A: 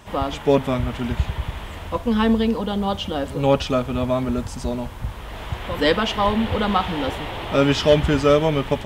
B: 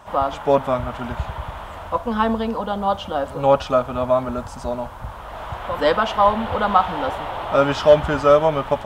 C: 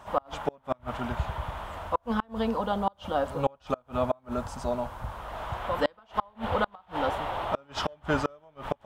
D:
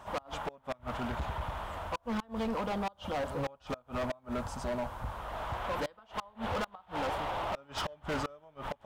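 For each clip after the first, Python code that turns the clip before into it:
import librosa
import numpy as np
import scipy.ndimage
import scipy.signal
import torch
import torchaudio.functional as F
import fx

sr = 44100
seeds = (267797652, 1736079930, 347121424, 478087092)

y1 = fx.band_shelf(x, sr, hz=910.0, db=10.5, octaves=1.7)
y1 = y1 * librosa.db_to_amplitude(-5.0)
y2 = fx.gate_flip(y1, sr, shuts_db=-9.0, range_db=-34)
y2 = y2 * librosa.db_to_amplitude(-4.0)
y3 = np.clip(10.0 ** (29.0 / 20.0) * y2, -1.0, 1.0) / 10.0 ** (29.0 / 20.0)
y3 = y3 * librosa.db_to_amplitude(-1.5)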